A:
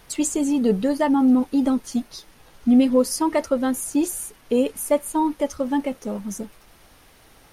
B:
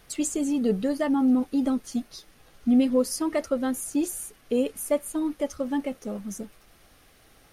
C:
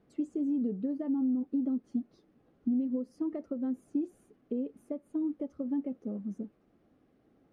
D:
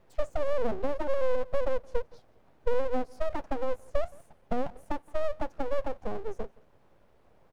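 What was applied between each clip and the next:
band-stop 930 Hz, Q 6.3; trim -4.5 dB
compression 6:1, threshold -27 dBFS, peak gain reduction 10.5 dB; band-pass filter 260 Hz, Q 1.6
delay 169 ms -24 dB; full-wave rectifier; trim +7 dB

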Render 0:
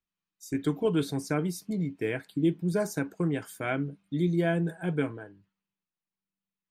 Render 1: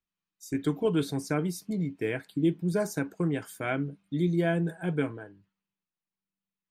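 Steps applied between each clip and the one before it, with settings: no audible change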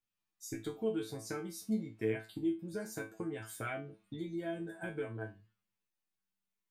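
compression, threshold -34 dBFS, peak gain reduction 13.5 dB; feedback comb 110 Hz, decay 0.25 s, harmonics all, mix 100%; trim +8.5 dB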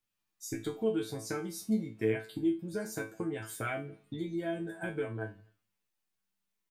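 feedback delay 84 ms, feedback 53%, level -24 dB; trim +4 dB

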